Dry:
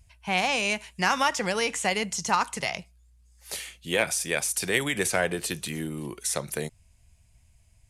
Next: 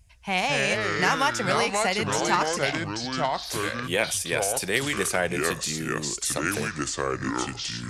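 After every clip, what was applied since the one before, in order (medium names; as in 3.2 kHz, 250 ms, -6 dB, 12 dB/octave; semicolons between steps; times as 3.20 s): ever faster or slower copies 125 ms, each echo -5 st, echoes 2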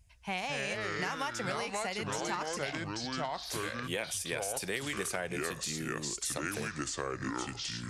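compression, threshold -25 dBFS, peak gain reduction 8 dB; trim -6 dB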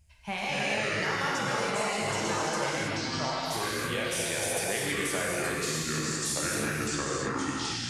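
gated-style reverb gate 350 ms flat, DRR -4.5 dB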